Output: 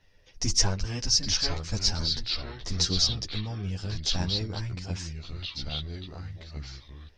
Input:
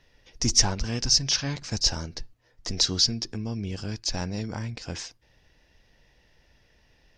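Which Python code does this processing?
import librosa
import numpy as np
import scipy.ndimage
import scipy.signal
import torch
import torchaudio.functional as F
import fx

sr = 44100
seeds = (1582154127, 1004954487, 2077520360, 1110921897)

y = fx.chorus_voices(x, sr, voices=4, hz=0.59, base_ms=11, depth_ms=1.3, mix_pct=50)
y = fx.echo_pitch(y, sr, ms=734, semitones=-3, count=2, db_per_echo=-6.0)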